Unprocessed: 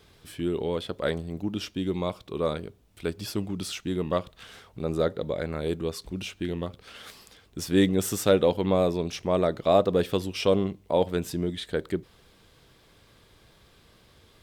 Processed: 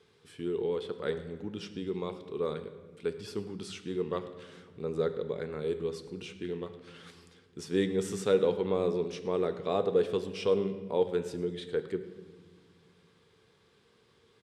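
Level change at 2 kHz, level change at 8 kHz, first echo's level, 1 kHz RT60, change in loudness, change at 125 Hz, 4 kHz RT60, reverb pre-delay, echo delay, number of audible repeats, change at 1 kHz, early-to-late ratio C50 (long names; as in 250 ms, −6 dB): −7.0 dB, −10.5 dB, −19.0 dB, 1.3 s, −5.0 dB, −9.0 dB, 1.1 s, 3 ms, 109 ms, 1, −8.0 dB, 11.0 dB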